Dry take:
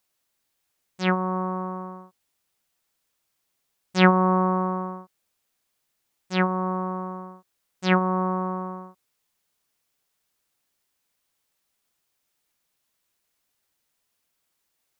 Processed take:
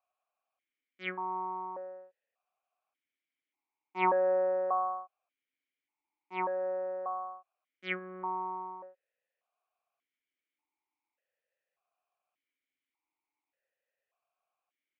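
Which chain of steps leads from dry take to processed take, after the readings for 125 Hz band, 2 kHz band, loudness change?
under -25 dB, -11.0 dB, -9.0 dB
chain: three-band isolator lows -20 dB, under 440 Hz, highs -16 dB, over 2.3 kHz; de-hum 414.3 Hz, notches 6; stepped vowel filter 1.7 Hz; trim +8.5 dB

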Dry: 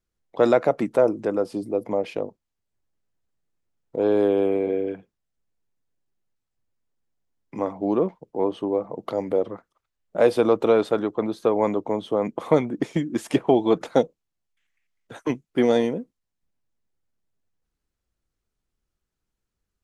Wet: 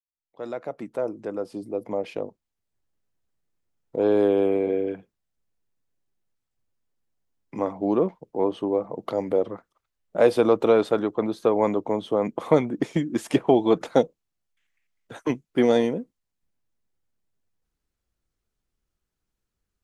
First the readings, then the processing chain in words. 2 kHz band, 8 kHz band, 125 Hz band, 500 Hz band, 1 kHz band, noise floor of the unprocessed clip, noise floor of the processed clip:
-1.0 dB, no reading, -0.5 dB, -1.0 dB, -1.0 dB, -83 dBFS, -83 dBFS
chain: fade-in on the opening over 2.93 s

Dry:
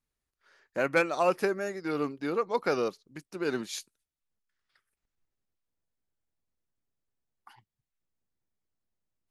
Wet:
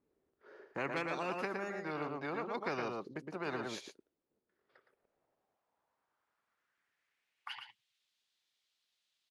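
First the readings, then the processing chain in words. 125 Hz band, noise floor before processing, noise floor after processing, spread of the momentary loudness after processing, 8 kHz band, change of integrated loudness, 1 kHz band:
-5.0 dB, under -85 dBFS, under -85 dBFS, 11 LU, -12.5 dB, -9.5 dB, -7.0 dB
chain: band-pass sweep 380 Hz -> 3.6 kHz, 4.47–7.96 s; delay 114 ms -7.5 dB; spectrum-flattening compressor 4:1; trim -3 dB

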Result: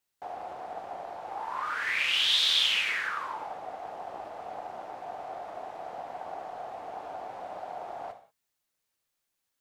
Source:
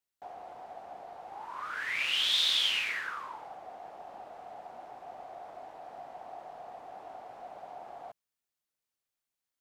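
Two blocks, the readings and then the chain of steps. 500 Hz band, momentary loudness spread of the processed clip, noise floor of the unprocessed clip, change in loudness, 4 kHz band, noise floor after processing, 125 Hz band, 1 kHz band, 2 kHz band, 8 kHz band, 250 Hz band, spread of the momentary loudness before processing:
+6.5 dB, 18 LU, under -85 dBFS, -2.0 dB, +3.0 dB, -82 dBFS, no reading, +6.0 dB, +4.0 dB, +2.5 dB, +6.0 dB, 21 LU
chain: in parallel at 0 dB: compression, threshold -38 dBFS, peak gain reduction 13 dB; on the sum: gated-style reverb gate 210 ms falling, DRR 5.5 dB; loudspeaker Doppler distortion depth 0.22 ms

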